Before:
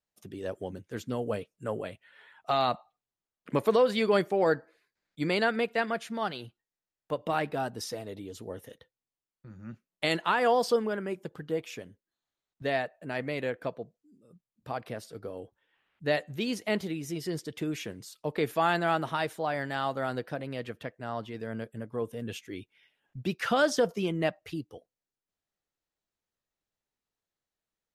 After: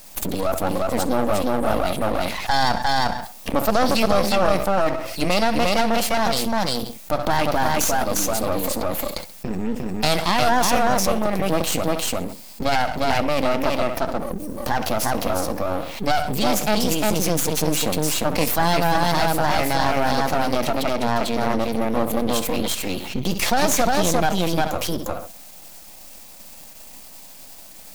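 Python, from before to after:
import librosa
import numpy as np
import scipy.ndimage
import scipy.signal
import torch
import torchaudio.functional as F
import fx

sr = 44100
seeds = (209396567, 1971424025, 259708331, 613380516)

y = fx.high_shelf(x, sr, hz=9200.0, db=9.5)
y = fx.notch(y, sr, hz=3000.0, q=9.5)
y = y + 10.0 ** (-3.5 / 20.0) * np.pad(y, (int(353 * sr / 1000.0), 0))[:len(y)]
y = fx.formant_shift(y, sr, semitones=3)
y = fx.fixed_phaser(y, sr, hz=400.0, stages=6)
y = fx.echo_feedback(y, sr, ms=66, feedback_pct=30, wet_db=-21.5)
y = np.maximum(y, 0.0)
y = fx.env_flatten(y, sr, amount_pct=70)
y = y * librosa.db_to_amplitude(8.5)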